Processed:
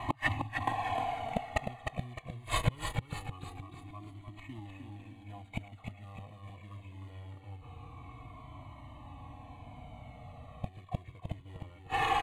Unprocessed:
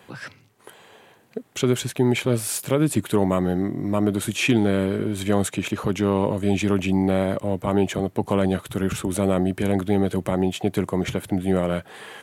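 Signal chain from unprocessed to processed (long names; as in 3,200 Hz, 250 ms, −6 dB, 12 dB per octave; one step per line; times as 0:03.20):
running median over 15 samples
dynamic equaliser 650 Hz, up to −6 dB, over −39 dBFS, Q 1.9
comb filter 2.7 ms, depth 90%
in parallel at −2 dB: downward compressor 4 to 1, threshold −34 dBFS, peak gain reduction 17.5 dB
on the sum: gate with flip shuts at −21 dBFS, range −35 dB
floating-point word with a short mantissa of 2 bits
high-frequency loss of the air 77 metres
phaser with its sweep stopped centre 1,500 Hz, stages 6
on a send: repeating echo 306 ms, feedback 45%, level −5.5 dB
on the sum: frozen spectrum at 0:07.65, 2.99 s
flanger whose copies keep moving one way falling 0.23 Hz
level +16.5 dB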